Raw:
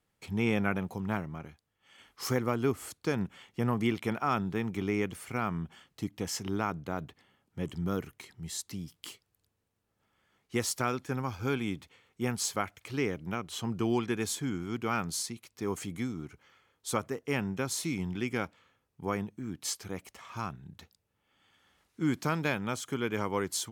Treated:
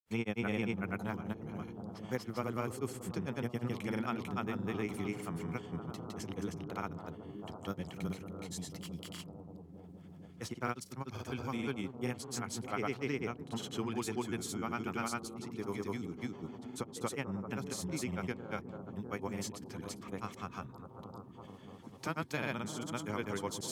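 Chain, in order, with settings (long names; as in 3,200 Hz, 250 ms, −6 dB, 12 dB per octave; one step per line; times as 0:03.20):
bucket-brigade delay 261 ms, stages 2,048, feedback 82%, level −12.5 dB
granular cloud 100 ms, grains 20 per second, spray 261 ms, pitch spread up and down by 0 semitones
multiband upward and downward compressor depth 40%
level −4.5 dB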